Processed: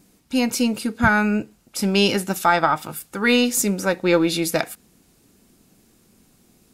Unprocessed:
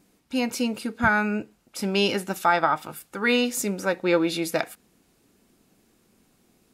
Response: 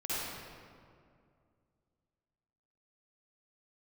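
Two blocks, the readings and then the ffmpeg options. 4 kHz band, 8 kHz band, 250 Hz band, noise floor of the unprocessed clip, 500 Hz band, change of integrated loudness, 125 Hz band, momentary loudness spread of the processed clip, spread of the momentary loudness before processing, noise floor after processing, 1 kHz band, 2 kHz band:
+5.0 dB, +7.5 dB, +5.5 dB, −65 dBFS, +3.5 dB, +4.5 dB, +7.0 dB, 8 LU, 10 LU, −59 dBFS, +3.0 dB, +3.0 dB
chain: -af "bass=frequency=250:gain=5,treble=frequency=4000:gain=5,aeval=exprs='0.473*(cos(1*acos(clip(val(0)/0.473,-1,1)))-cos(1*PI/2))+0.0299*(cos(2*acos(clip(val(0)/0.473,-1,1)))-cos(2*PI/2))+0.0168*(cos(4*acos(clip(val(0)/0.473,-1,1)))-cos(4*PI/2))':channel_layout=same,volume=3dB"

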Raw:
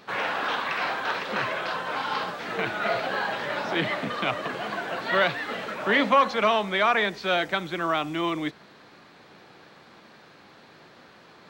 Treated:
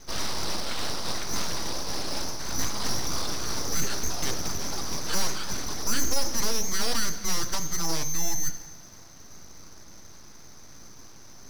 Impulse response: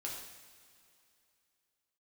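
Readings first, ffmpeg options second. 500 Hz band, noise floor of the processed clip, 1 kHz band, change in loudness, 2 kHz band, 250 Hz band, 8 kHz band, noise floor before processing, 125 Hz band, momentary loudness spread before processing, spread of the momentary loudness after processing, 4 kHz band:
−10.5 dB, −46 dBFS, −11.0 dB, −3.5 dB, −11.5 dB, −4.5 dB, +23.5 dB, −52 dBFS, +2.5 dB, 9 LU, 22 LU, +1.0 dB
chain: -filter_complex "[0:a]lowshelf=frequency=600:width_type=q:width=1.5:gain=6.5,lowpass=frequency=2900:width_type=q:width=0.5098,lowpass=frequency=2900:width_type=q:width=0.6013,lowpass=frequency=2900:width_type=q:width=0.9,lowpass=frequency=2900:width_type=q:width=2.563,afreqshift=-3400,aeval=exprs='abs(val(0))':channel_layout=same,asplit=2[link_01][link_02];[1:a]atrim=start_sample=2205[link_03];[link_02][link_03]afir=irnorm=-1:irlink=0,volume=-9dB[link_04];[link_01][link_04]amix=inputs=2:normalize=0,aeval=exprs='(tanh(3.16*val(0)+0.65)-tanh(0.65))/3.16':channel_layout=same,volume=3.5dB"

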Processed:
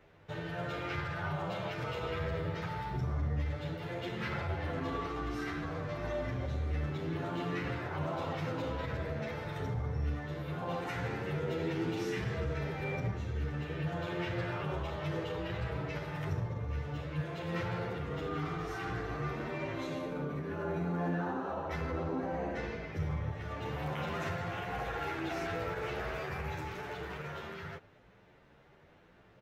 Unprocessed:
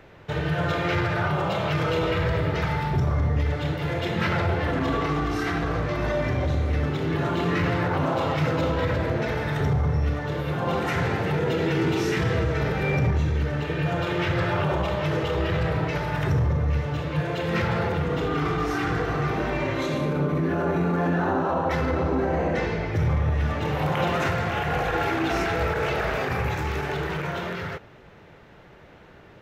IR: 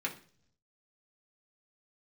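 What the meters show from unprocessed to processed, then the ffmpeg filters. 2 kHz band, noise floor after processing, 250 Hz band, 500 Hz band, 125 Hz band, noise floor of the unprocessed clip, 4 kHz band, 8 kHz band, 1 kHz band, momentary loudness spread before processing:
−12.0 dB, −61 dBFS, −12.0 dB, −12.0 dB, −12.0 dB, −49 dBFS, −12.0 dB, can't be measured, −12.0 dB, 3 LU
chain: -filter_complex "[0:a]asplit=2[link_01][link_02];[link_02]adelay=10.2,afreqshift=0.87[link_03];[link_01][link_03]amix=inputs=2:normalize=1,volume=-9dB"

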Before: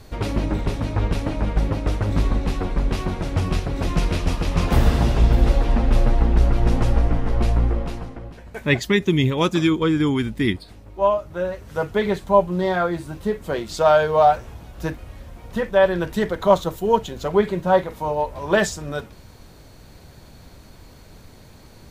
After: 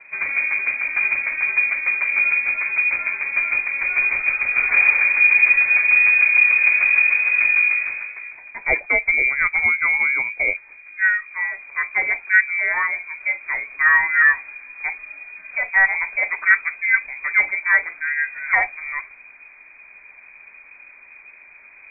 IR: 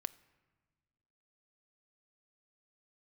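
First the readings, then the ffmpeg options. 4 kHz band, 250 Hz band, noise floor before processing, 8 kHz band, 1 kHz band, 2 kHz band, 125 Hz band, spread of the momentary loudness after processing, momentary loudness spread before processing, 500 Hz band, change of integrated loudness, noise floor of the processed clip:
below −40 dB, below −25 dB, −46 dBFS, below −40 dB, −6.5 dB, +16.5 dB, below −30 dB, 13 LU, 11 LU, −18.0 dB, +5.0 dB, −46 dBFS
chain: -af "lowpass=frequency=2100:width_type=q:width=0.5098,lowpass=frequency=2100:width_type=q:width=0.6013,lowpass=frequency=2100:width_type=q:width=0.9,lowpass=frequency=2100:width_type=q:width=2.563,afreqshift=-2500,asubboost=boost=4:cutoff=52"

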